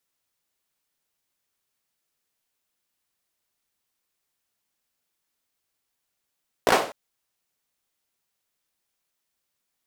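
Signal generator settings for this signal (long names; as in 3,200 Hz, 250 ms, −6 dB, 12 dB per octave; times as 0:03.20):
synth clap length 0.25 s, apart 17 ms, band 570 Hz, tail 0.41 s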